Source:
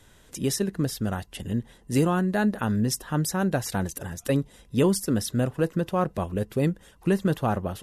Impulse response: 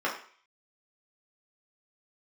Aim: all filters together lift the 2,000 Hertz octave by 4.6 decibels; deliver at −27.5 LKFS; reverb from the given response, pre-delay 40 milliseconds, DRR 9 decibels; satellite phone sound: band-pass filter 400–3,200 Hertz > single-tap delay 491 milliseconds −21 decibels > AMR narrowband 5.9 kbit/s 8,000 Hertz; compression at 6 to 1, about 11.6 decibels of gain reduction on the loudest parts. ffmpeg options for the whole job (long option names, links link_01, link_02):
-filter_complex "[0:a]equalizer=frequency=2000:width_type=o:gain=7,acompressor=threshold=-30dB:ratio=6,asplit=2[link_01][link_02];[1:a]atrim=start_sample=2205,adelay=40[link_03];[link_02][link_03]afir=irnorm=-1:irlink=0,volume=-20dB[link_04];[link_01][link_04]amix=inputs=2:normalize=0,highpass=400,lowpass=3200,aecho=1:1:491:0.0891,volume=13.5dB" -ar 8000 -c:a libopencore_amrnb -b:a 5900